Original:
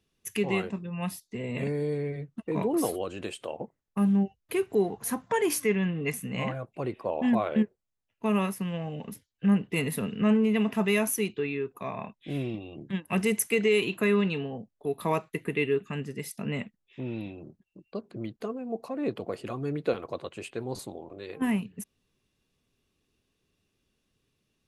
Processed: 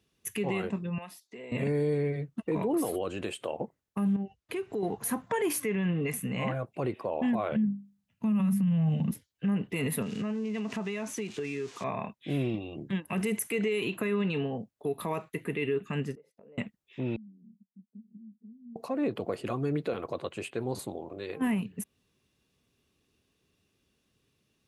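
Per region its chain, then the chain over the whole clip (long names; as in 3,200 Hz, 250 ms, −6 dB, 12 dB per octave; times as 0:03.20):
0:00.98–0:01.52: high-pass filter 380 Hz + downward compressor 2.5 to 1, threshold −46 dBFS + high-shelf EQ 5,600 Hz −7.5 dB
0:04.16–0:04.83: low-pass filter 7,500 Hz + downward compressor 2.5 to 1, threshold −37 dBFS
0:07.52–0:09.11: high-pass filter 61 Hz + low shelf with overshoot 270 Hz +10 dB, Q 3 + mains-hum notches 50/100/150/200/250/300/350 Hz
0:10.02–0:11.84: spike at every zero crossing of −30.5 dBFS + Chebyshev low-pass filter 6,600 Hz, order 3 + downward compressor 12 to 1, threshold −32 dBFS
0:16.15–0:16.58: resonant band-pass 510 Hz, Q 5.3 + downward compressor, threshold −54 dBFS
0:17.16–0:18.76: downward compressor 4 to 1, threshold −49 dBFS + flat-topped band-pass 210 Hz, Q 3.9 + comb filter 4.8 ms, depth 73%
whole clip: dynamic equaliser 5,400 Hz, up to −6 dB, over −54 dBFS, Q 1.4; brickwall limiter −24 dBFS; high-pass filter 50 Hz; level +2.5 dB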